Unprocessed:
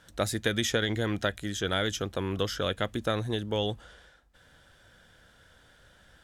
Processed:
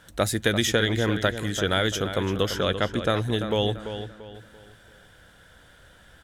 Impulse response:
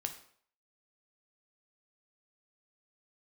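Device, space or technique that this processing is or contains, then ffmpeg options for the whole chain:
exciter from parts: -filter_complex "[0:a]asettb=1/sr,asplit=3[s0][s1][s2];[s0]atrim=end=2.614[s3];[s1]atrim=start=2.61:end=3.09,asetpts=PTS-STARTPTS,afade=t=in:d=0.004:c=qsin,afade=t=out:st=0.476:d=0.004:c=qsin,lowpass=7900[s4];[s2]atrim=start=3.086[s5];[s3][s4]acrossfade=d=0.004:c1=hsin:c2=qsin[s6];[s6][s5]acrossfade=d=0.004:c1=qsin:c2=hsin,asplit=2[s7][s8];[s8]highpass=4700,asoftclip=type=tanh:threshold=0.02,highpass=4400,volume=0.447[s9];[s7][s9]amix=inputs=2:normalize=0,asplit=2[s10][s11];[s11]adelay=340,lowpass=f=4200:p=1,volume=0.335,asplit=2[s12][s13];[s13]adelay=340,lowpass=f=4200:p=1,volume=0.36,asplit=2[s14][s15];[s15]adelay=340,lowpass=f=4200:p=1,volume=0.36,asplit=2[s16][s17];[s17]adelay=340,lowpass=f=4200:p=1,volume=0.36[s18];[s10][s12][s14][s16][s18]amix=inputs=5:normalize=0,volume=1.78"

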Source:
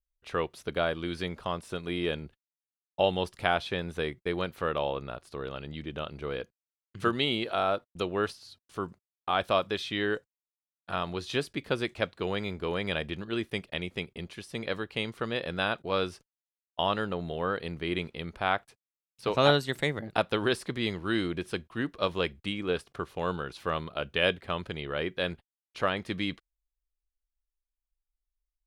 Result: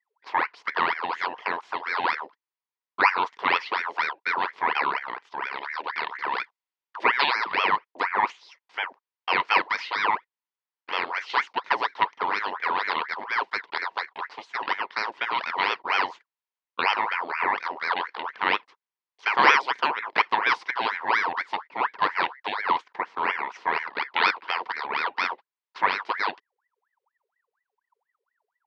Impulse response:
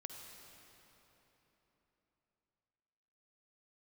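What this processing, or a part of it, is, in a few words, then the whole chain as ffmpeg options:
voice changer toy: -filter_complex "[0:a]aeval=exprs='val(0)*sin(2*PI*1200*n/s+1200*0.65/4.2*sin(2*PI*4.2*n/s))':c=same,highpass=400,equalizer=f=430:t=q:w=4:g=4,equalizer=f=610:t=q:w=4:g=-6,equalizer=f=970:t=q:w=4:g=10,equalizer=f=2000:t=q:w=4:g=3,equalizer=f=3800:t=q:w=4:g=-3,lowpass=f=4700:w=0.5412,lowpass=f=4700:w=1.3066,asplit=3[s0][s1][s2];[s0]afade=t=out:st=5.51:d=0.02[s3];[s1]adynamicequalizer=threshold=0.01:dfrequency=1800:dqfactor=0.7:tfrequency=1800:tqfactor=0.7:attack=5:release=100:ratio=0.375:range=2:mode=boostabove:tftype=highshelf,afade=t=in:st=5.51:d=0.02,afade=t=out:st=7.3:d=0.02[s4];[s2]afade=t=in:st=7.3:d=0.02[s5];[s3][s4][s5]amix=inputs=3:normalize=0,volume=1.88"

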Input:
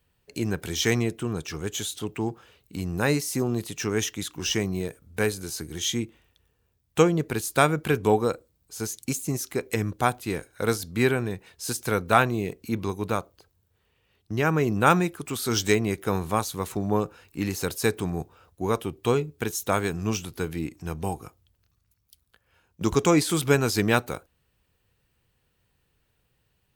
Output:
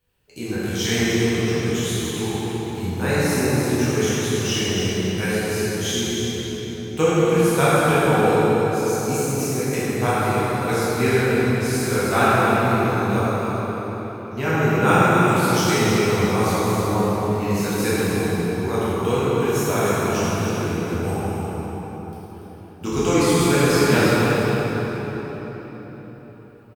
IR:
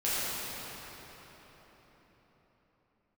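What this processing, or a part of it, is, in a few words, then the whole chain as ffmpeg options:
cave: -filter_complex "[0:a]aecho=1:1:287:0.376[s0];[1:a]atrim=start_sample=2205[s1];[s0][s1]afir=irnorm=-1:irlink=0,volume=0.562"

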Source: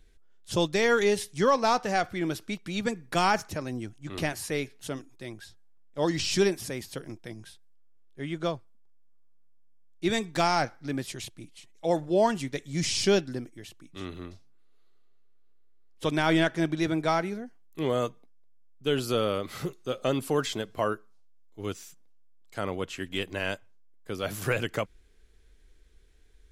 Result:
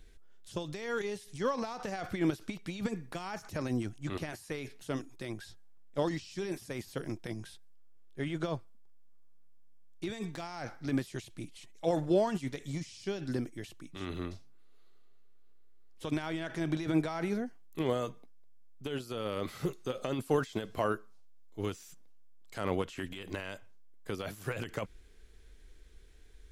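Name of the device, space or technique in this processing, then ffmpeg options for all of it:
de-esser from a sidechain: -filter_complex "[0:a]asplit=2[s0][s1];[s1]highpass=4300,apad=whole_len=1169091[s2];[s0][s2]sidechaincompress=threshold=0.002:ratio=20:attack=3.4:release=31,volume=1.41"

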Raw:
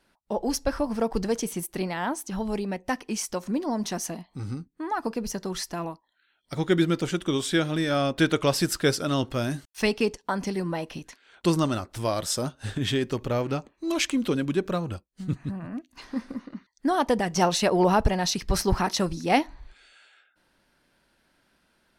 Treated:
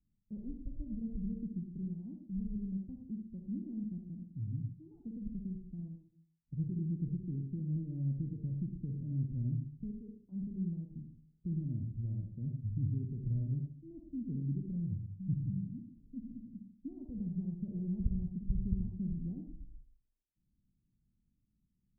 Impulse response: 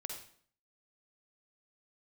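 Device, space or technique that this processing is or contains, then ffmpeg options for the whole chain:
club heard from the street: -filter_complex "[0:a]asplit=3[s0][s1][s2];[s0]afade=t=out:st=9.9:d=0.02[s3];[s1]highpass=f=770:p=1,afade=t=in:st=9.9:d=0.02,afade=t=out:st=10.31:d=0.02[s4];[s2]afade=t=in:st=10.31:d=0.02[s5];[s3][s4][s5]amix=inputs=3:normalize=0,alimiter=limit=0.15:level=0:latency=1:release=109,lowpass=f=190:w=0.5412,lowpass=f=190:w=1.3066[s6];[1:a]atrim=start_sample=2205[s7];[s6][s7]afir=irnorm=-1:irlink=0"

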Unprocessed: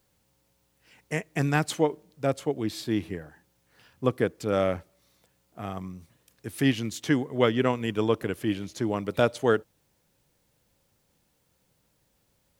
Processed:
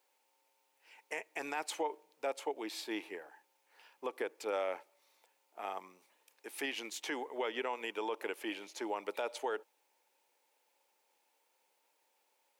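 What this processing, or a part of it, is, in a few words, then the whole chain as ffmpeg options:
laptop speaker: -af "highpass=f=380:w=0.5412,highpass=f=380:w=1.3066,equalizer=f=880:t=o:w=0.29:g=11.5,equalizer=f=2400:t=o:w=0.49:g=6.5,alimiter=limit=0.0944:level=0:latency=1:release=87,volume=0.501"

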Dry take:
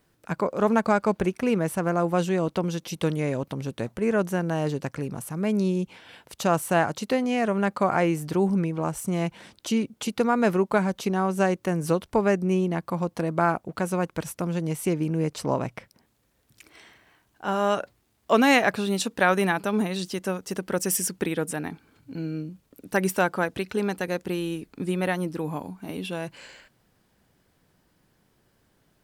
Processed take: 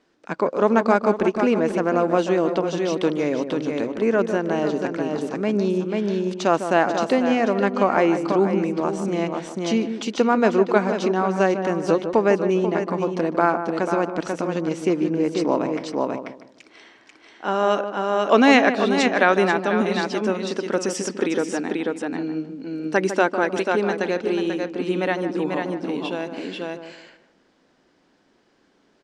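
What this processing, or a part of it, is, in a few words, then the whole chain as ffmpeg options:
ducked delay: -filter_complex "[0:a]lowpass=f=6400:w=0.5412,lowpass=f=6400:w=1.3066,lowshelf=f=180:t=q:w=1.5:g=-13,asplit=3[s0][s1][s2];[s1]adelay=489,volume=0.794[s3];[s2]apad=whole_len=1302040[s4];[s3][s4]sidechaincompress=threshold=0.0355:ratio=8:attack=20:release=237[s5];[s0][s5]amix=inputs=2:normalize=0,asplit=2[s6][s7];[s7]adelay=152,lowpass=f=1100:p=1,volume=0.398,asplit=2[s8][s9];[s9]adelay=152,lowpass=f=1100:p=1,volume=0.33,asplit=2[s10][s11];[s11]adelay=152,lowpass=f=1100:p=1,volume=0.33,asplit=2[s12][s13];[s13]adelay=152,lowpass=f=1100:p=1,volume=0.33[s14];[s6][s8][s10][s12][s14]amix=inputs=5:normalize=0,volume=1.41"

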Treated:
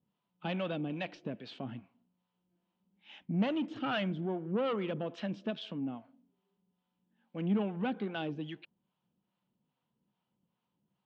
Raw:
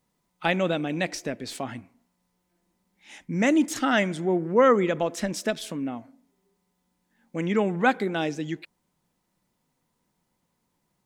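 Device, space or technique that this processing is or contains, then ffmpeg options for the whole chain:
guitar amplifier with harmonic tremolo: -filter_complex "[0:a]asettb=1/sr,asplit=3[s0][s1][s2];[s0]atrim=end=3.344[s3];[s1]atrim=start=3.34:end=3.98,asetpts=PTS-STARTPTS,afade=t=in:d=0.004:c=qsin,afade=t=out:st=0.636:d=0.004:c=qsin,equalizer=f=710:w=0.5:g=3.5[s4];[s2]atrim=start=3.976[s5];[s3][s4]acrossfade=d=0.004:c1=hsin:c2=qsin[s6];[s6][s5]acrossfade=d=0.004:c1=qsin:c2=hsin,acrossover=split=530[s7][s8];[s7]aeval=exprs='val(0)*(1-0.7/2+0.7/2*cos(2*PI*2.4*n/s))':c=same[s9];[s8]aeval=exprs='val(0)*(1-0.7/2-0.7/2*cos(2*PI*2.4*n/s))':c=same[s10];[s9][s10]amix=inputs=2:normalize=0,asoftclip=type=tanh:threshold=0.0708,highpass=79,equalizer=f=130:t=q:w=4:g=5,equalizer=f=200:t=q:w=4:g=7,equalizer=f=2000:t=q:w=4:g=-8,equalizer=f=3000:t=q:w=4:g=7,lowpass=f=3600:w=0.5412,lowpass=f=3600:w=1.3066,volume=0.531"

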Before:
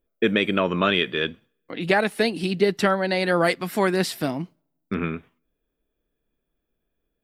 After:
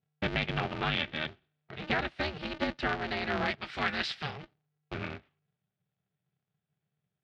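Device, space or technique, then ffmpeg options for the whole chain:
ring modulator pedal into a guitar cabinet: -filter_complex "[0:a]asettb=1/sr,asplit=3[s0][s1][s2];[s0]atrim=end=3.614[s3];[s1]atrim=start=3.61:end=4.43,asetpts=PTS-STARTPTS,afade=t=in:d=0.004:c=qsin,afade=t=out:st=0.816:d=0.004:c=qsin,tiltshelf=f=690:g=-8.5[s4];[s2]atrim=start=4.426[s5];[s3][s4]acrossfade=d=0.004:c1=hsin:c2=qsin[s6];[s6][s5]acrossfade=d=0.004:c1=qsin:c2=hsin,aeval=exprs='val(0)*sgn(sin(2*PI*150*n/s))':c=same,highpass=76,equalizer=f=140:t=q:w=4:g=6,equalizer=f=300:t=q:w=4:g=-9,equalizer=f=510:t=q:w=4:g=-9,equalizer=f=1000:t=q:w=4:g=-7,lowpass=f=4100:w=0.5412,lowpass=f=4100:w=1.3066,volume=0.398"

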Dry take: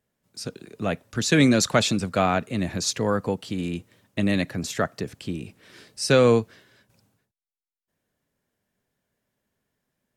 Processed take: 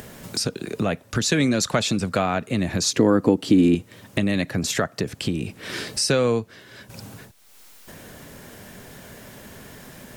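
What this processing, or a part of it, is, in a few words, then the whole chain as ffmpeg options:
upward and downward compression: -filter_complex "[0:a]acompressor=mode=upward:threshold=0.1:ratio=2.5,acompressor=threshold=0.0794:ratio=3,asettb=1/sr,asplit=3[s0][s1][s2];[s0]atrim=end=2.934[s3];[s1]atrim=start=2.93:end=3.75,asetpts=PTS-STARTPTS,afade=t=in:d=0.004:c=qsin,afade=t=out:st=0.816:d=0.004:c=qsin,equalizer=f=300:w=1.8:g=14[s4];[s2]atrim=start=3.746[s5];[s3][s4]acrossfade=d=0.004:c1=hsin:c2=qsin[s6];[s6][s5]acrossfade=d=0.004:c1=qsin:c2=hsin,volume=1.5"

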